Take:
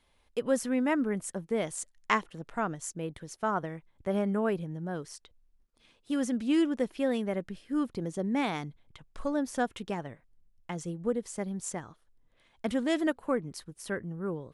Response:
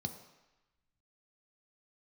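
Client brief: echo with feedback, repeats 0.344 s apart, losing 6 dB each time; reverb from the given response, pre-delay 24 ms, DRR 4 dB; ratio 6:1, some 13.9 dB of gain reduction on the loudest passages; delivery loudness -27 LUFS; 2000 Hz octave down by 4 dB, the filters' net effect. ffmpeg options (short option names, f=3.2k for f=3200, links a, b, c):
-filter_complex "[0:a]equalizer=f=2k:t=o:g=-5,acompressor=threshold=-38dB:ratio=6,aecho=1:1:344|688|1032|1376|1720|2064:0.501|0.251|0.125|0.0626|0.0313|0.0157,asplit=2[a][b];[1:a]atrim=start_sample=2205,adelay=24[c];[b][c]afir=irnorm=-1:irlink=0,volume=-3.5dB[d];[a][d]amix=inputs=2:normalize=0,volume=9.5dB"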